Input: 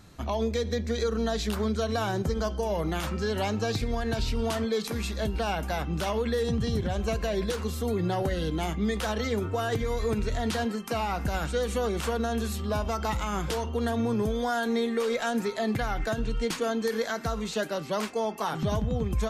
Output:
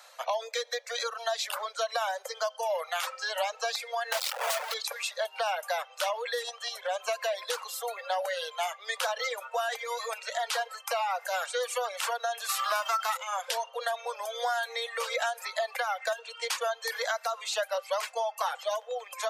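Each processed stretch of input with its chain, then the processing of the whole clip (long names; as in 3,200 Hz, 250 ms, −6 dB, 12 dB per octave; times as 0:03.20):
0:04.12–0:04.74: high-shelf EQ 4,500 Hz +10.5 dB + notch filter 340 Hz, Q 11 + comparator with hysteresis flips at −38.5 dBFS
0:12.48–0:13.16: spectral envelope flattened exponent 0.6 + parametric band 1,300 Hz +11.5 dB 0.5 octaves + notch filter 500 Hz, Q 5.8
whole clip: Butterworth high-pass 510 Hz 96 dB per octave; reverb reduction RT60 1.6 s; downward compressor 4 to 1, threshold −33 dBFS; level +6 dB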